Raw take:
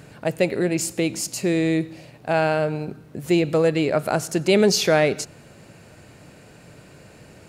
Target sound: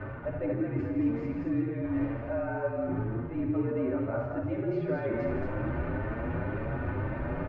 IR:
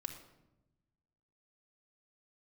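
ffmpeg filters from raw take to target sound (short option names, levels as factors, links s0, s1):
-filter_complex "[0:a]aeval=exprs='val(0)+0.5*0.0282*sgn(val(0))':c=same,lowpass=f=1700:w=0.5412,lowpass=f=1700:w=1.3066,areverse,acompressor=threshold=0.0251:ratio=6,areverse,afreqshift=-39,aecho=1:1:72.89|163.3|224.5:0.355|0.355|0.631[s0];[1:a]atrim=start_sample=2205[s1];[s0][s1]afir=irnorm=-1:irlink=0,asplit=2[s2][s3];[s3]adelay=7.5,afreqshift=2[s4];[s2][s4]amix=inputs=2:normalize=1,volume=1.88"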